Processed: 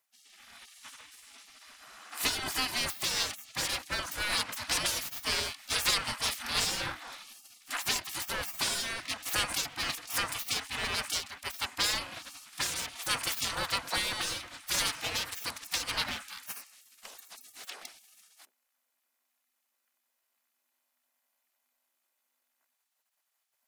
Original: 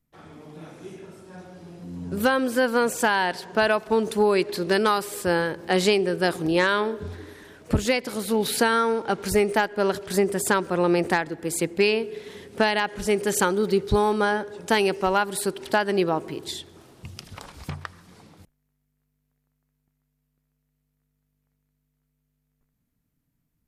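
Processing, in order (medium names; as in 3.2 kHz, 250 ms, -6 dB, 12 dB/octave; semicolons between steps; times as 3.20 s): comb filter that takes the minimum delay 2 ms; spectral gate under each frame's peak -25 dB weak; trim +7.5 dB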